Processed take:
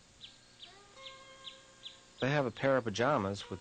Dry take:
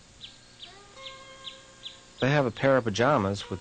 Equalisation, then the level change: low shelf 150 Hz -3 dB; -7.0 dB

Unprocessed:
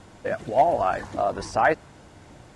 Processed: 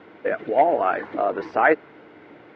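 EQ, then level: speaker cabinet 220–3300 Hz, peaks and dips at 310 Hz +7 dB, 440 Hz +9 dB, 1400 Hz +5 dB, 2100 Hz +7 dB; 0.0 dB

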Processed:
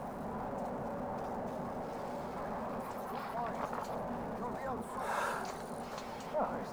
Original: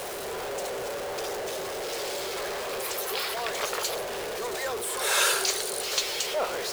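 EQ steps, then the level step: EQ curve 110 Hz 0 dB, 240 Hz +11 dB, 380 Hz -15 dB, 870 Hz -2 dB, 3200 Hz -27 dB; +1.0 dB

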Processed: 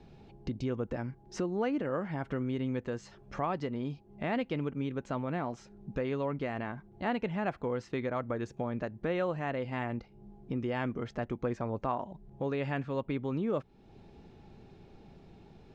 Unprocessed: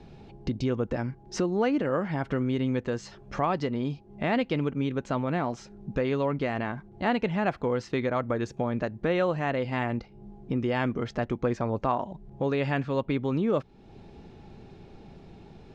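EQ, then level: dynamic EQ 4700 Hz, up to -4 dB, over -51 dBFS, Q 1.2; -6.0 dB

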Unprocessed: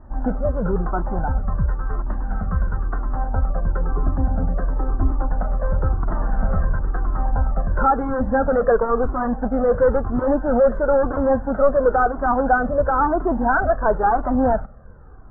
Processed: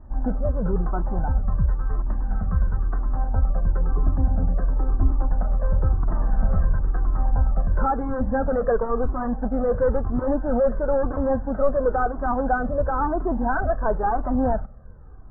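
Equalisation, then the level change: air absorption 170 m; low shelf 190 Hz +5.5 dB; notch 1400 Hz, Q 17; -5.0 dB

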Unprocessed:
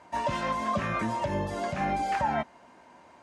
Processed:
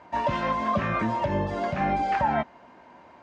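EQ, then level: air absorption 120 m; high shelf 7500 Hz -5.5 dB; +4.0 dB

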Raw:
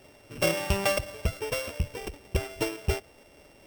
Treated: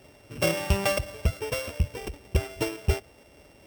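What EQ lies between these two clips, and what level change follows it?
HPF 45 Hz; low shelf 140 Hz +6.5 dB; 0.0 dB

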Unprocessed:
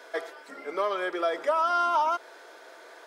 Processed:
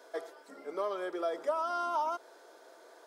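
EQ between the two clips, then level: bell 2200 Hz -10 dB 1.7 oct; -4.0 dB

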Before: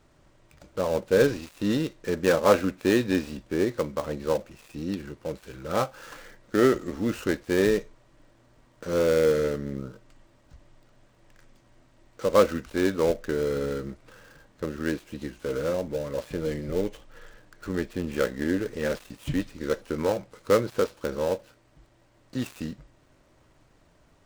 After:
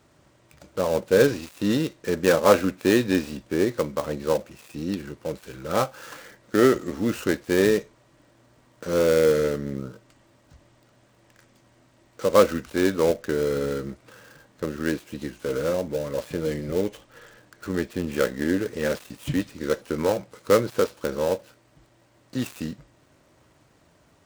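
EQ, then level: HPF 73 Hz; high shelf 6900 Hz +4 dB; +2.5 dB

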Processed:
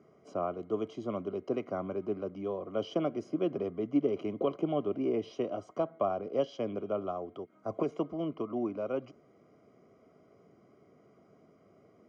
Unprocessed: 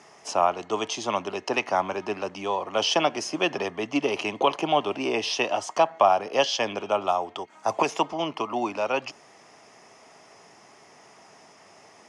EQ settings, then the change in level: running mean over 50 samples; 0.0 dB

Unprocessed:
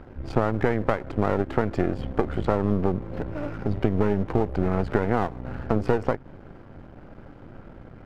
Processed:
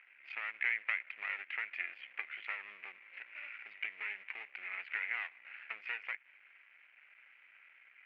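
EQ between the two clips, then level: Butterworth band-pass 2300 Hz, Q 3.3; +8.0 dB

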